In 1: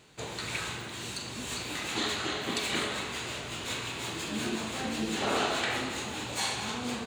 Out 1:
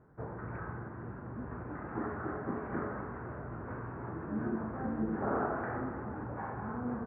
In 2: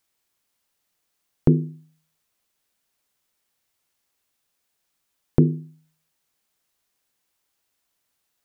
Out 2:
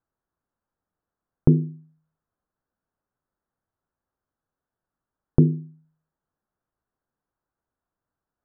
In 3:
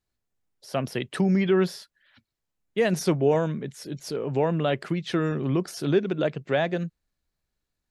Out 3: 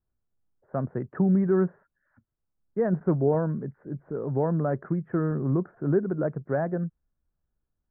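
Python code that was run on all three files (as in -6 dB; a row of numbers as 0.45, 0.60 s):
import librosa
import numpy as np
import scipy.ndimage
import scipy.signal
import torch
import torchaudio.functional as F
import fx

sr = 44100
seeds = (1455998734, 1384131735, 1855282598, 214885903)

y = scipy.signal.sosfilt(scipy.signal.butter(8, 1600.0, 'lowpass', fs=sr, output='sos'), x)
y = fx.low_shelf(y, sr, hz=230.0, db=7.5)
y = F.gain(torch.from_numpy(y), -4.0).numpy()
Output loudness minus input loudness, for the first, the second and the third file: -6.0, +0.5, -1.5 LU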